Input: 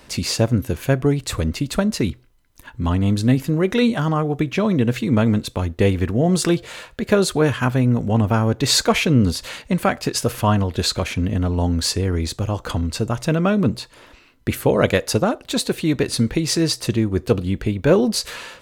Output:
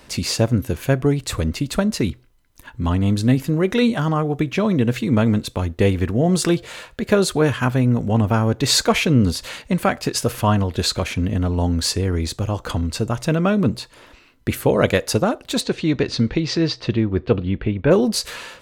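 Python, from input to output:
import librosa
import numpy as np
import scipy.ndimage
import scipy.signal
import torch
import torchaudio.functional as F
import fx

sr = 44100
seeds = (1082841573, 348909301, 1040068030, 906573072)

y = fx.lowpass(x, sr, hz=fx.line((15.6, 6800.0), (17.9, 3000.0)), slope=24, at=(15.6, 17.9), fade=0.02)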